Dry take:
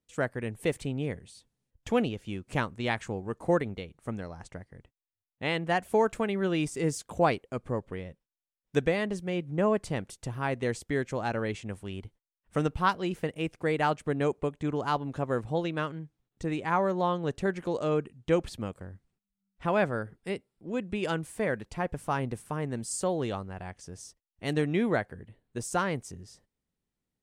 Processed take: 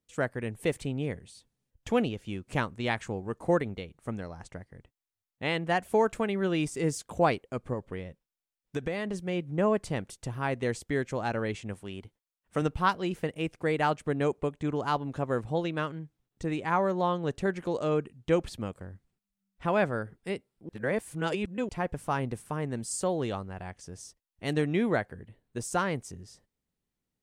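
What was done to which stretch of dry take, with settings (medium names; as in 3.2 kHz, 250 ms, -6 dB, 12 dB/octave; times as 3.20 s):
7.73–9.14 s: compression, threshold -27 dBFS
11.74–12.62 s: bass shelf 86 Hz -11.5 dB
20.69–21.69 s: reverse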